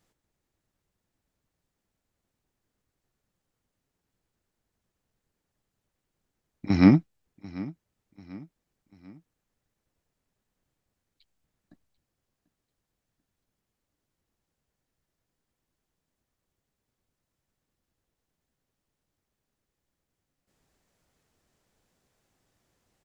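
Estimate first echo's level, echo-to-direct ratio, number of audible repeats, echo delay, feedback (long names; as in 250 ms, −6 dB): −19.0 dB, −18.0 dB, 3, 741 ms, 44%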